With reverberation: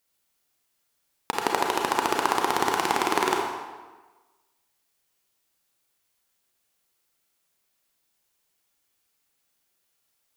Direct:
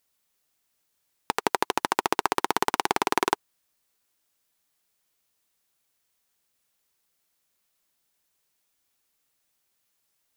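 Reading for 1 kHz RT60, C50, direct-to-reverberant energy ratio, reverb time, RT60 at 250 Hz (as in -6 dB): 1.3 s, 2.0 dB, 0.0 dB, 1.3 s, 1.2 s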